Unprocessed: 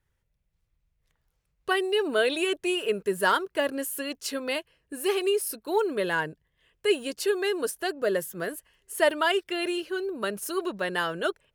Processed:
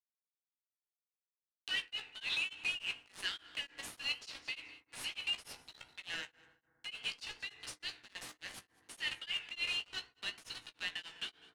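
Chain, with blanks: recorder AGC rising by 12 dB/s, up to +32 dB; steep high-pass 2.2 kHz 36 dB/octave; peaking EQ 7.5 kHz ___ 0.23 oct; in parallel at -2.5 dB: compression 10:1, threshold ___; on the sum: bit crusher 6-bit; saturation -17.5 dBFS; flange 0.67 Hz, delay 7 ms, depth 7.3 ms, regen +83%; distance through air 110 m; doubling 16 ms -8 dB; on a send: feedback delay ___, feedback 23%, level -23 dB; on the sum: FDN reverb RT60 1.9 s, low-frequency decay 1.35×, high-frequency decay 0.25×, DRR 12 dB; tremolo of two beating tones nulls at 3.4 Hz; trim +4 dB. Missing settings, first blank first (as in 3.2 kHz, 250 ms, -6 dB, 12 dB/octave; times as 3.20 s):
-3.5 dB, -46 dBFS, 202 ms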